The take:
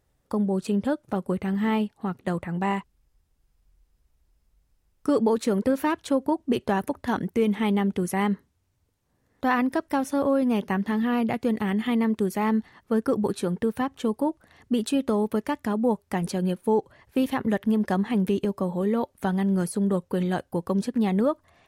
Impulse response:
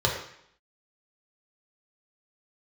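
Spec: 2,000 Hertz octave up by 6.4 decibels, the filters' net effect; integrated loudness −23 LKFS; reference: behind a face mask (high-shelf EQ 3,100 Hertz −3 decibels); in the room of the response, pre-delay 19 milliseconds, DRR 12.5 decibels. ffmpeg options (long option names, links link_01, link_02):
-filter_complex "[0:a]equalizer=frequency=2000:width_type=o:gain=8.5,asplit=2[link_01][link_02];[1:a]atrim=start_sample=2205,adelay=19[link_03];[link_02][link_03]afir=irnorm=-1:irlink=0,volume=-25.5dB[link_04];[link_01][link_04]amix=inputs=2:normalize=0,highshelf=frequency=3100:gain=-3,volume=2dB"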